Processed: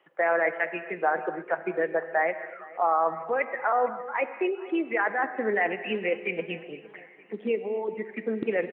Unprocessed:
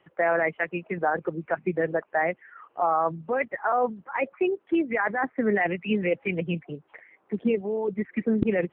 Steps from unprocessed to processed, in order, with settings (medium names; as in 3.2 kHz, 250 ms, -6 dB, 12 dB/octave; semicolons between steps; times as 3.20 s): high-pass 370 Hz 12 dB/octave; feedback delay 462 ms, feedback 53%, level -21.5 dB; gated-style reverb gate 300 ms flat, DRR 10.5 dB